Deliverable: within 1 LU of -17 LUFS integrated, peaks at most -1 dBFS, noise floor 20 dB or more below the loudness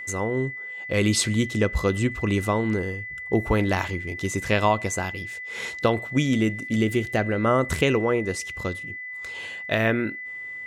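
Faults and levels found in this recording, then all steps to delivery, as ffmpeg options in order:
steady tone 2000 Hz; tone level -33 dBFS; loudness -25.0 LUFS; peak -6.5 dBFS; loudness target -17.0 LUFS
-> -af "bandreject=f=2k:w=30"
-af "volume=8dB,alimiter=limit=-1dB:level=0:latency=1"

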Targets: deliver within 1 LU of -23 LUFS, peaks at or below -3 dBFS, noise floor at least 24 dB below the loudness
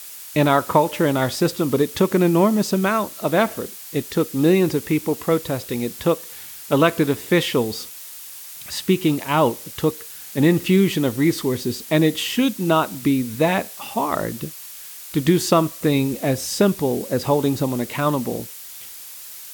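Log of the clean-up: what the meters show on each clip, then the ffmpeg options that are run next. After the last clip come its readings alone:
noise floor -38 dBFS; noise floor target -45 dBFS; loudness -20.5 LUFS; peak -2.5 dBFS; loudness target -23.0 LUFS
-> -af "afftdn=nr=7:nf=-38"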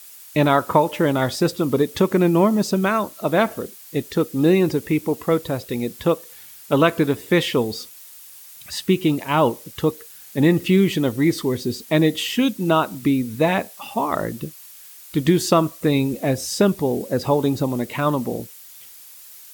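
noise floor -43 dBFS; noise floor target -45 dBFS
-> -af "afftdn=nr=6:nf=-43"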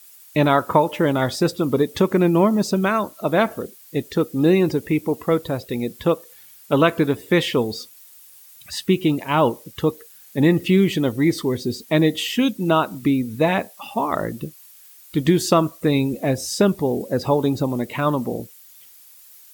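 noise floor -47 dBFS; loudness -20.5 LUFS; peak -2.5 dBFS; loudness target -23.0 LUFS
-> -af "volume=-2.5dB"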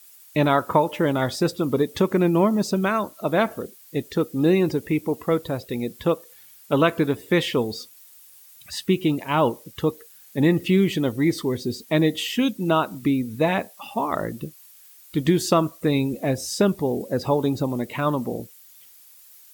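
loudness -23.0 LUFS; peak -5.0 dBFS; noise floor -50 dBFS

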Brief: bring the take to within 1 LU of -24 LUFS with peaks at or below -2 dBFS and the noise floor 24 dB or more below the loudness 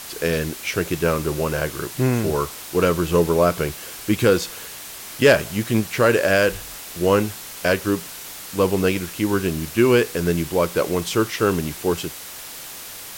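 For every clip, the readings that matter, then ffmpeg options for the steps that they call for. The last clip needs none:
noise floor -36 dBFS; noise floor target -45 dBFS; loudness -21.0 LUFS; peak -5.0 dBFS; loudness target -24.0 LUFS
-> -af "afftdn=nr=9:nf=-36"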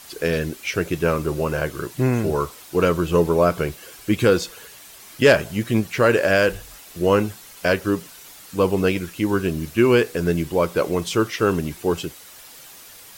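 noise floor -44 dBFS; noise floor target -45 dBFS
-> -af "afftdn=nr=6:nf=-44"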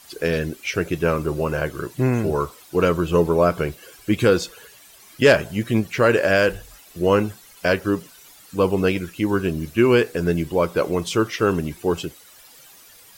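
noise floor -48 dBFS; loudness -21.0 LUFS; peak -5.5 dBFS; loudness target -24.0 LUFS
-> -af "volume=-3dB"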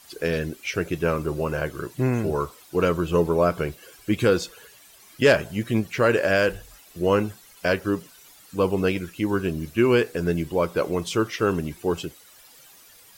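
loudness -24.0 LUFS; peak -8.5 dBFS; noise floor -51 dBFS

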